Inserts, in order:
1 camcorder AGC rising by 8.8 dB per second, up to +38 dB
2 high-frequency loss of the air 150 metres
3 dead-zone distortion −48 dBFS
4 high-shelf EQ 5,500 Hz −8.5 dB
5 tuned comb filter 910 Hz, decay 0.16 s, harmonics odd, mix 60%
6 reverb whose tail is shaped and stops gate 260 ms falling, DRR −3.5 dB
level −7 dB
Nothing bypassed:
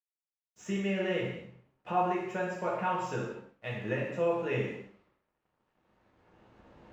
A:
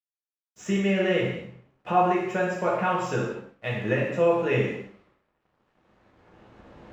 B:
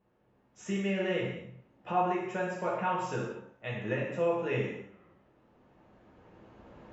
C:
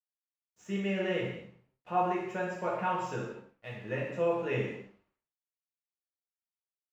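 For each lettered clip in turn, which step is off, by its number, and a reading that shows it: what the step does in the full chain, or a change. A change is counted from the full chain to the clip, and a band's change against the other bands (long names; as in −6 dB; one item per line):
5, change in integrated loudness +7.5 LU
3, distortion level −27 dB
1, change in momentary loudness spread +2 LU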